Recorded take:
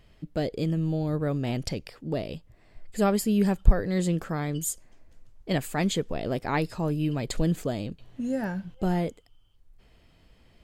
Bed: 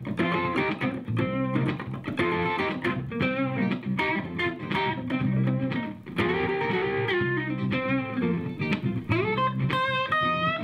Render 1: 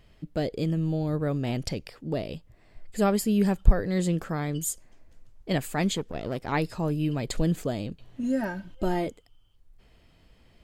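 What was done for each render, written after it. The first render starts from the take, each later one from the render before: 5.95–6.52 tube stage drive 22 dB, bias 0.65; 8.23–9.07 comb 3.2 ms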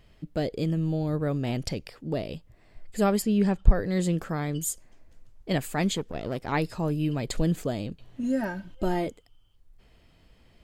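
3.22–3.75 air absorption 64 m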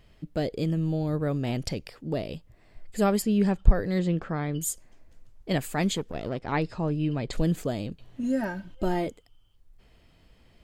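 3.99–4.61 LPF 3400 Hz; 6.29–7.33 air absorption 100 m; 8.44–9.08 median filter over 3 samples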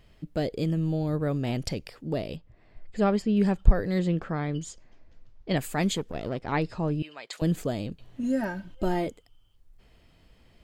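2.36–3.37 air absorption 140 m; 4.58–5.57 LPF 5500 Hz 24 dB/oct; 7.02–7.42 HPF 1000 Hz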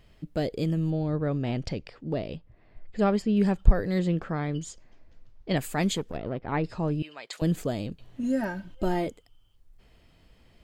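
0.9–2.99 air absorption 120 m; 6.17–6.64 air absorption 330 m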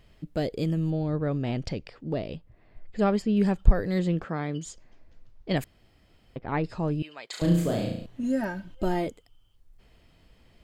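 4.24–4.66 HPF 140 Hz; 5.64–6.36 room tone; 7.3–8.06 flutter echo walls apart 6 m, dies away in 0.69 s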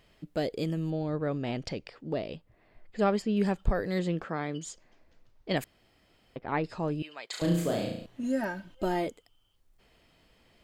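low shelf 170 Hz -11 dB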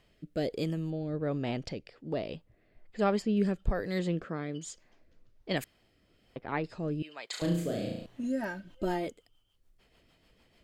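rotary speaker horn 1.2 Hz, later 6.7 Hz, at 8.06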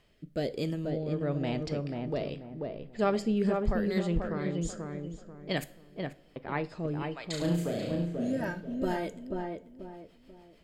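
darkening echo 0.487 s, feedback 35%, low-pass 1300 Hz, level -3 dB; two-slope reverb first 0.4 s, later 2 s, from -20 dB, DRR 13 dB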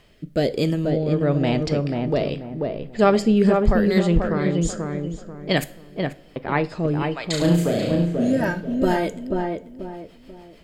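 gain +11 dB

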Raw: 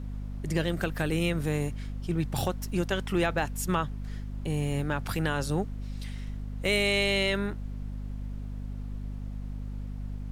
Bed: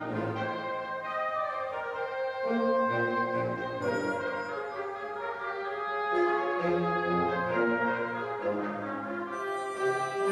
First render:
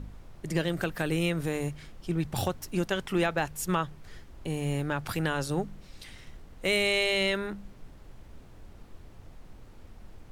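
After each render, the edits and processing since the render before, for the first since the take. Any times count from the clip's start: de-hum 50 Hz, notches 5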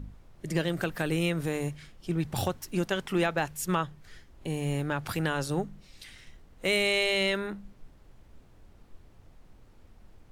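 noise print and reduce 6 dB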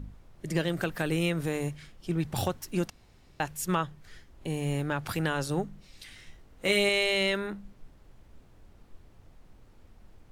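2.9–3.4 room tone; 6.09–6.89 doubler 20 ms -6 dB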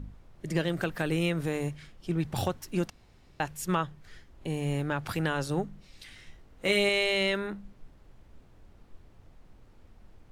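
high shelf 6600 Hz -5 dB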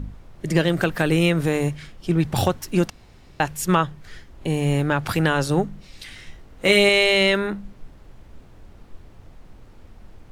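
gain +9.5 dB

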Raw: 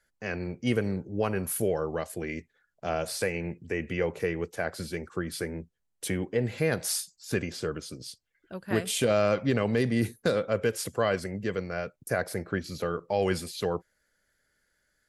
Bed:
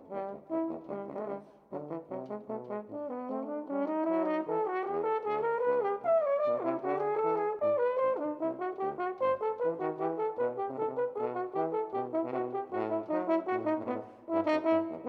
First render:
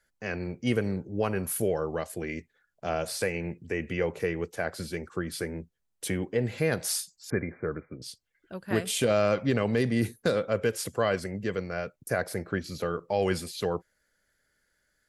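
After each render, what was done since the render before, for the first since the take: 7.3–8.02 brick-wall FIR low-pass 2400 Hz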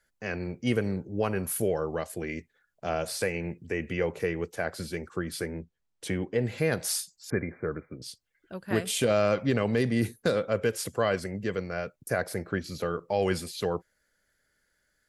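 5.46–6.33 air absorption 52 m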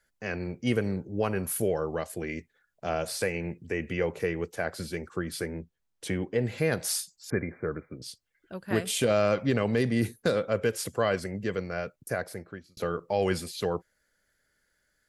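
11.93–12.77 fade out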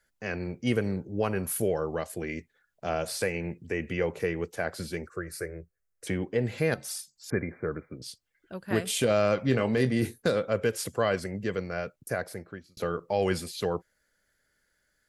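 5.07–6.07 fixed phaser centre 890 Hz, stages 6; 6.74–7.16 metallic resonator 65 Hz, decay 0.24 s, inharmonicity 0.03; 9.43–10.22 doubler 23 ms -8.5 dB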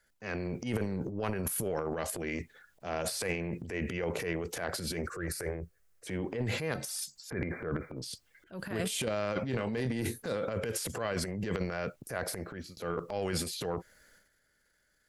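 compressor, threshold -30 dBFS, peak gain reduction 11 dB; transient shaper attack -8 dB, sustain +12 dB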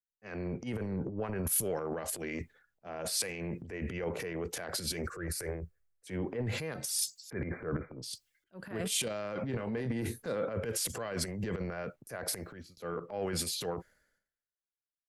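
limiter -26 dBFS, peak gain reduction 10 dB; three-band expander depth 100%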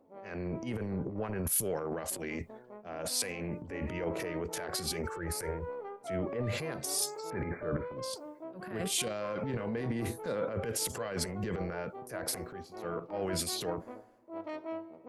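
add bed -12 dB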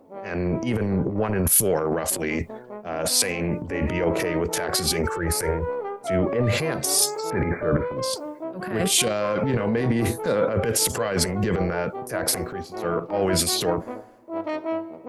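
gain +12 dB

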